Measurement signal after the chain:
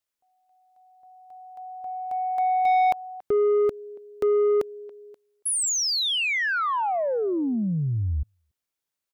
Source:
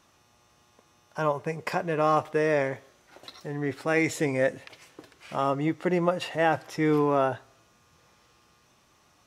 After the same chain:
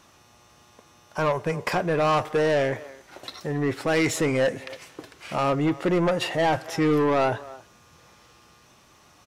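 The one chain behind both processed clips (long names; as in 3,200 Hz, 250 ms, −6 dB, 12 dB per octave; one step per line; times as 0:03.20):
far-end echo of a speakerphone 280 ms, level −23 dB
soft clipping −24 dBFS
level +7 dB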